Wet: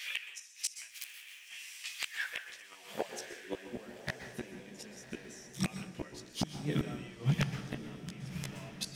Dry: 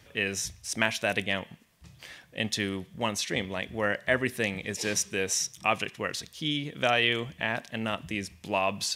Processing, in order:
0:00.88–0:01.47: compressing power law on the bin magnitudes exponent 0.22
high-pass filter sweep 2,400 Hz → 160 Hz, 0:01.91–0:04.09
dynamic equaliser 3,600 Hz, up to −4 dB, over −42 dBFS, Q 3.7
downward compressor 5 to 1, threshold −37 dBFS, peak gain reduction 17.5 dB
gate with flip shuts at −31 dBFS, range −29 dB
multi-voice chorus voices 4, 0.6 Hz, delay 15 ms, depth 1.6 ms
wave folding −38 dBFS
on a send: feedback delay with all-pass diffusion 1,120 ms, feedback 42%, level −11.5 dB
on the sum: dense smooth reverb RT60 0.68 s, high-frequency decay 0.65×, pre-delay 110 ms, DRR 8.5 dB
level +17.5 dB

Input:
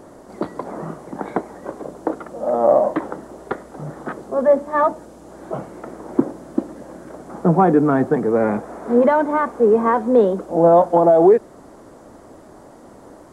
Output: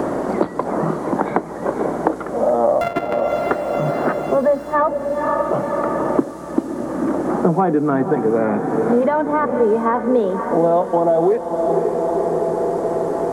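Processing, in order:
0:02.81–0:03.33: samples sorted by size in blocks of 64 samples
feedback delay with all-pass diffusion 530 ms, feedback 56%, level −10 dB
multiband upward and downward compressor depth 100%
level −1 dB

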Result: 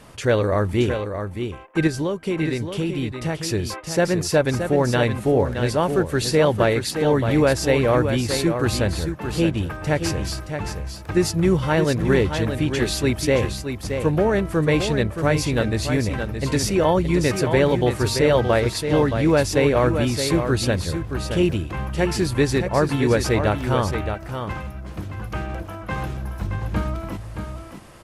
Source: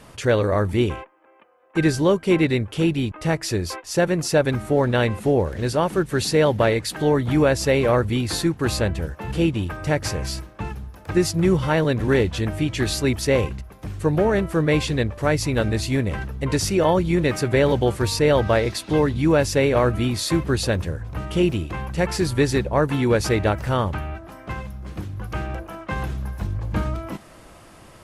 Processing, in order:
0:01.87–0:03.42: downward compressor, threshold −21 dBFS, peak gain reduction 8 dB
single-tap delay 622 ms −7.5 dB

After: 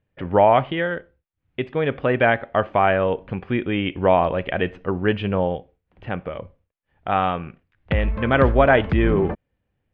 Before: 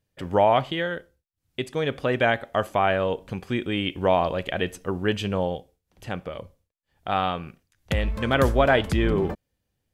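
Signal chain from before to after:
low-pass filter 2,700 Hz 24 dB per octave
level +4 dB

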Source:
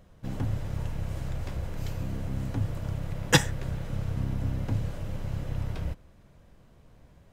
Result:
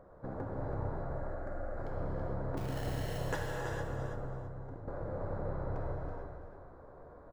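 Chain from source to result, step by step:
adaptive Wiener filter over 15 samples
0:04.07–0:04.88: noise gate −22 dBFS, range −18 dB
flat-topped bell 730 Hz +13.5 dB 2.7 octaves
downward compressor 6 to 1, threshold −32 dBFS, peak gain reduction 24.5 dB
0:01.01–0:01.77: phaser with its sweep stopped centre 640 Hz, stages 8
0:02.57–0:03.18: sample-rate reduction 1,200 Hz, jitter 0%
repeating echo 329 ms, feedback 21%, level −8.5 dB
reverb whose tail is shaped and stops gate 480 ms flat, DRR −2 dB
level −6.5 dB

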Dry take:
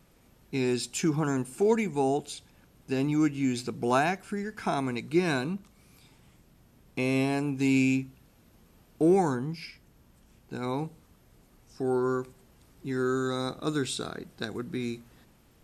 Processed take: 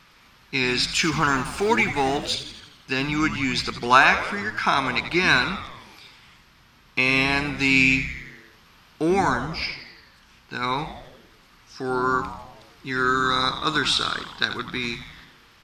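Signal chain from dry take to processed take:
0:00.99–0:02.35: mu-law and A-law mismatch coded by mu
flat-topped bell 2,300 Hz +15 dB 2.9 octaves
echo with shifted repeats 85 ms, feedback 59%, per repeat −100 Hz, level −11 dB

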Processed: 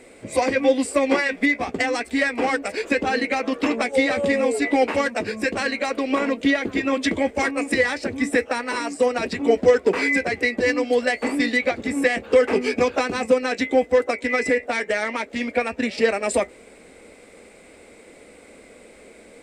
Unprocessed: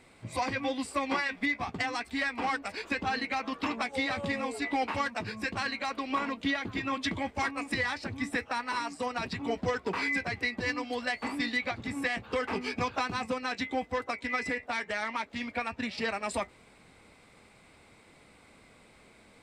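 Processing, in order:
octave-band graphic EQ 125/250/500/1,000/2,000/4,000/8,000 Hz −11/+4/+11/−7/+3/−4/+6 dB
level +7.5 dB

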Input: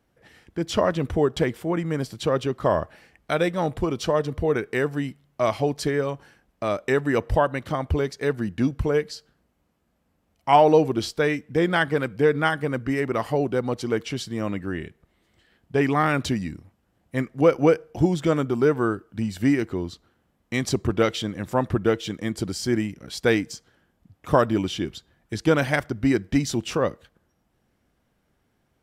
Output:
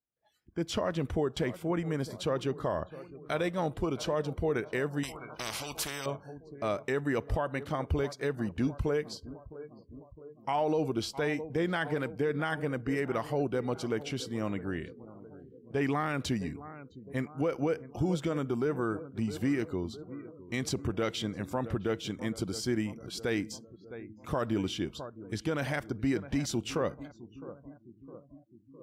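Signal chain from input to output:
feedback echo with a low-pass in the loop 660 ms, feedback 62%, low-pass 1,500 Hz, level −17.5 dB
noise reduction from a noise print of the clip's start 25 dB
brickwall limiter −15 dBFS, peak gain reduction 10 dB
0:05.03–0:06.06: every bin compressed towards the loudest bin 4 to 1
level −6 dB

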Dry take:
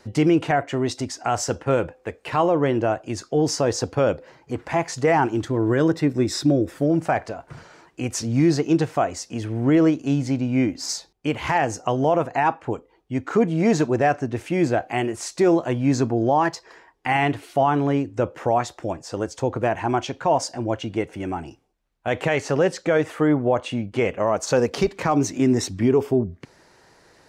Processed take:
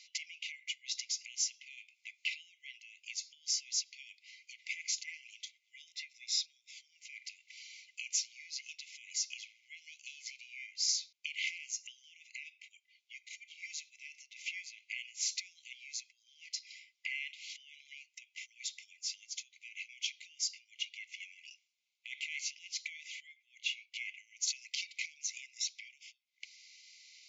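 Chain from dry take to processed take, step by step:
brickwall limiter −17 dBFS, peak gain reduction 7.5 dB
downward compressor 4 to 1, threshold −33 dBFS, peak gain reduction 11 dB
linear-phase brick-wall band-pass 2,000–7,400 Hz
level +4 dB

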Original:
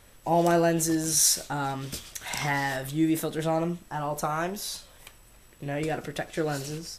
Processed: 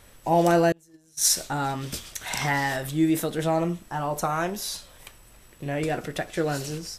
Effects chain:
0:00.72–0:01.30: noise gate −20 dBFS, range −33 dB
level +2.5 dB

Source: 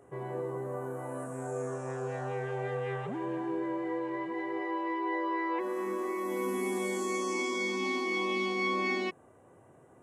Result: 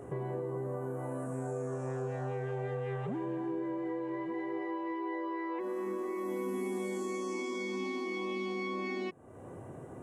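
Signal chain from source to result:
downward compressor 3 to 1, threshold −50 dBFS, peak gain reduction 16.5 dB
low-shelf EQ 490 Hz +8.5 dB
level +6.5 dB

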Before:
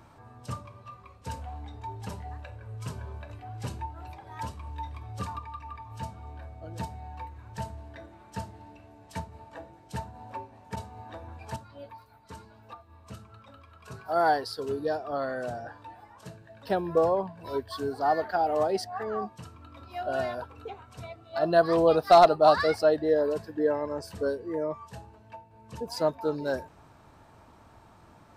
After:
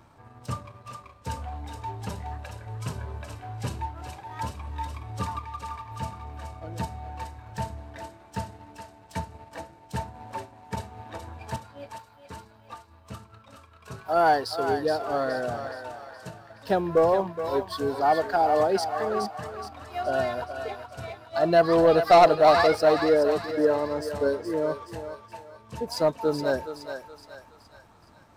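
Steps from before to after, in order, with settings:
leveller curve on the samples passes 1
feedback echo with a high-pass in the loop 421 ms, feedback 49%, high-pass 680 Hz, level −6.5 dB

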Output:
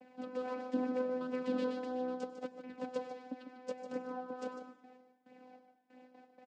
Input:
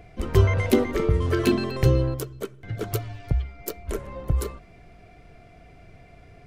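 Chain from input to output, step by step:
noise gate with hold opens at −39 dBFS
low-shelf EQ 170 Hz −11.5 dB
notch filter 2,100 Hz, Q 18
reversed playback
downward compressor 6 to 1, threshold −30 dBFS, peak gain reduction 14.5 dB
reversed playback
channel vocoder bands 8, saw 253 Hz
flanger 0.75 Hz, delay 0.3 ms, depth 3.4 ms, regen +46%
single-tap delay 150 ms −9.5 dB
on a send at −14 dB: convolution reverb RT60 0.95 s, pre-delay 88 ms
on the sum: level +1.5 dB

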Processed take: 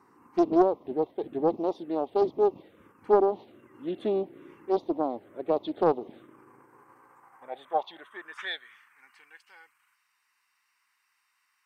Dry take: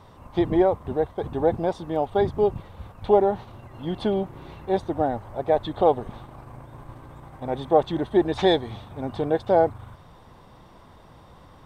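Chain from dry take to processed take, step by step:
high-pass filter sweep 320 Hz → 2,800 Hz, 0:06.28–0:09.46
phaser swept by the level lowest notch 590 Hz, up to 1,600 Hz, full sweep at −16 dBFS
highs frequency-modulated by the lows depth 0.43 ms
level −6.5 dB

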